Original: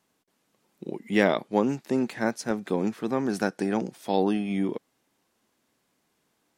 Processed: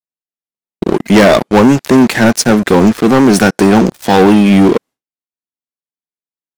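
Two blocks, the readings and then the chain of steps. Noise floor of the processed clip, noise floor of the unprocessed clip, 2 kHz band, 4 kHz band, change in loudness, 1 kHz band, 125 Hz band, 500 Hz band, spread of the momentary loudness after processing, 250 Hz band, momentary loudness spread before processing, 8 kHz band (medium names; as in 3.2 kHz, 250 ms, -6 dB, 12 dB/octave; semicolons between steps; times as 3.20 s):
under -85 dBFS, -74 dBFS, +17.5 dB, +20.5 dB, +18.0 dB, +18.0 dB, +20.5 dB, +17.0 dB, 5 LU, +19.0 dB, 8 LU, +23.5 dB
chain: expander -47 dBFS; waveshaping leveller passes 5; in parallel at -0.5 dB: peak limiter -17 dBFS, peak gain reduction 10 dB; on the sum: trim +3 dB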